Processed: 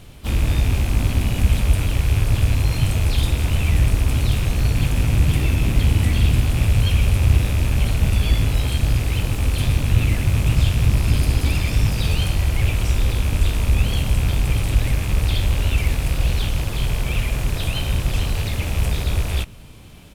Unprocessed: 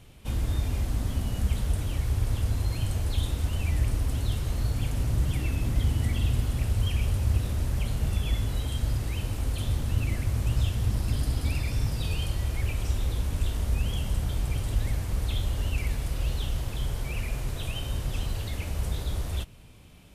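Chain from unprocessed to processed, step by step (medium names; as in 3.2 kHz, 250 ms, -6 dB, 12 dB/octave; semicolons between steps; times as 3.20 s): rattle on loud lows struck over -33 dBFS, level -30 dBFS; harmony voices -12 st -18 dB, +5 st -9 dB; trim +8.5 dB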